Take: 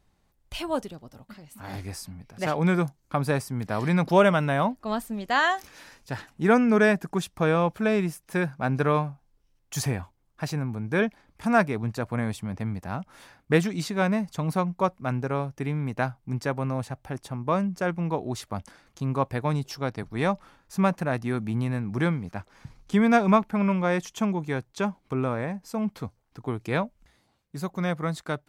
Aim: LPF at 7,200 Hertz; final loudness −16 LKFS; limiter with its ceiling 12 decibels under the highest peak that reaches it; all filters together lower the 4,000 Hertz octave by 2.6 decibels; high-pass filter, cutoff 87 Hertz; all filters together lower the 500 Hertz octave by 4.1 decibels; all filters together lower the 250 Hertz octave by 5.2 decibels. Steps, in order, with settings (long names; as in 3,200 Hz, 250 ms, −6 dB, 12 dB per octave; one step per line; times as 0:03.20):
high-pass filter 87 Hz
low-pass filter 7,200 Hz
parametric band 250 Hz −6.5 dB
parametric band 500 Hz −3.5 dB
parametric band 4,000 Hz −3 dB
level +17.5 dB
brickwall limiter −3.5 dBFS